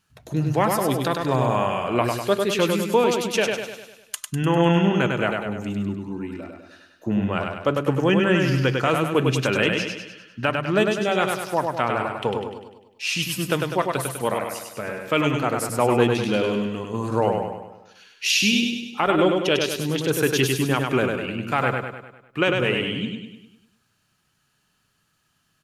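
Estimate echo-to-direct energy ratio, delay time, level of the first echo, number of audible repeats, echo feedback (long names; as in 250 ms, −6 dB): −2.5 dB, 100 ms, −4.0 dB, 6, 51%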